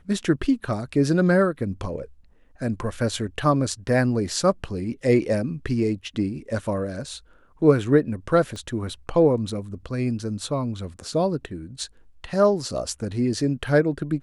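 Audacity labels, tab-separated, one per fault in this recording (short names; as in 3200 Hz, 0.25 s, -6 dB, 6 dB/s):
8.560000	8.560000	pop -24 dBFS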